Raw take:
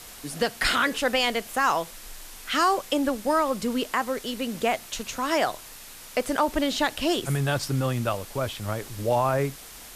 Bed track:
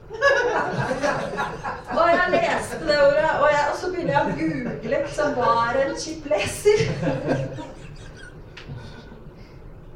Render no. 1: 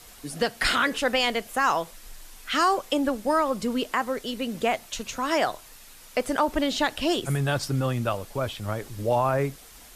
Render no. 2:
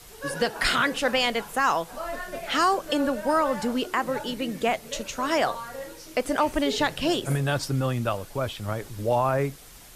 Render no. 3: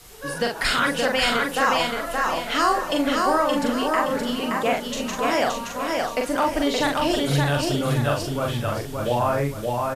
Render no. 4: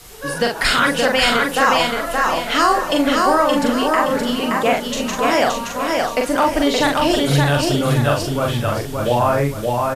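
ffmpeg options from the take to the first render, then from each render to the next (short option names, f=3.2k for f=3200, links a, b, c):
-af "afftdn=nr=6:nf=-44"
-filter_complex "[1:a]volume=-16dB[a];[0:a][a]amix=inputs=2:normalize=0"
-filter_complex "[0:a]asplit=2[a][b];[b]adelay=42,volume=-3.5dB[c];[a][c]amix=inputs=2:normalize=0,asplit=2[d][e];[e]aecho=0:1:572|1144|1716|2288|2860:0.708|0.262|0.0969|0.0359|0.0133[f];[d][f]amix=inputs=2:normalize=0"
-af "volume=5.5dB,alimiter=limit=-3dB:level=0:latency=1"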